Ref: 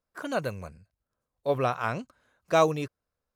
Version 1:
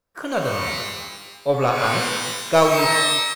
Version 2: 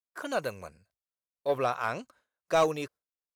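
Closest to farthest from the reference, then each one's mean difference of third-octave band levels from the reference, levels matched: 2, 1; 3.0, 10.0 decibels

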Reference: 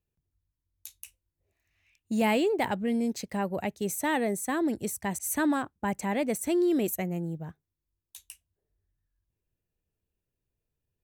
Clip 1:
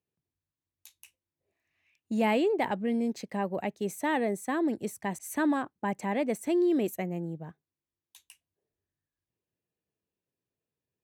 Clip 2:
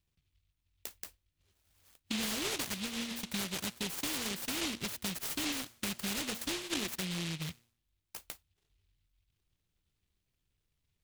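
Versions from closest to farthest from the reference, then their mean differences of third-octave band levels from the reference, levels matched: 1, 2; 3.0, 15.5 decibels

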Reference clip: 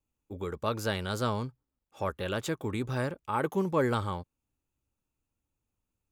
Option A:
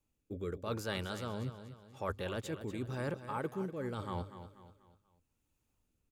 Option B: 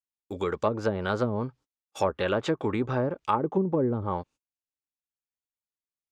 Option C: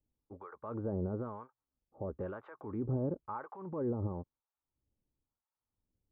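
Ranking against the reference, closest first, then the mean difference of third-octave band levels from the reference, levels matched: A, B, C; 4.5, 7.0, 12.0 decibels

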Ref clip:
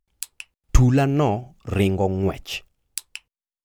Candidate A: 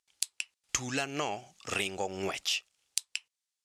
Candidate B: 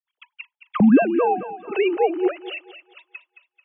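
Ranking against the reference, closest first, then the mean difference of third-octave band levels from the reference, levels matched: A, B; 9.0, 12.5 decibels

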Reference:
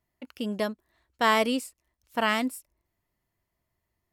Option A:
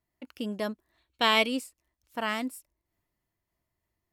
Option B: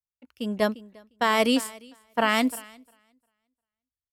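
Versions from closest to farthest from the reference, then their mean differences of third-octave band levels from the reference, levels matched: A, B; 1.5, 5.0 decibels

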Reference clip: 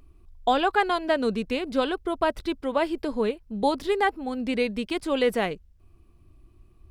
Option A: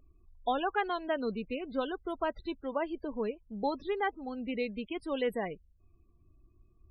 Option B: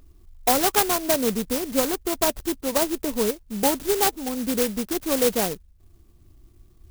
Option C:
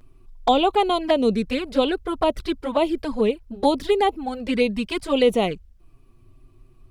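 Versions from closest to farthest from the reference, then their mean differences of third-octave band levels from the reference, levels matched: C, A, B; 2.5, 6.5, 10.0 decibels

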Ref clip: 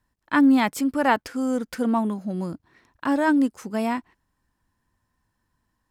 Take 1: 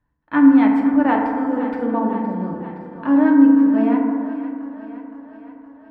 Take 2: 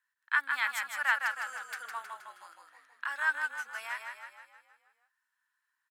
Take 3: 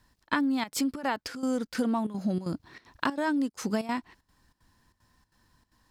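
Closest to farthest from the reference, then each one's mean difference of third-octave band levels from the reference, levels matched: 3, 1, 2; 5.0, 9.0, 12.0 decibels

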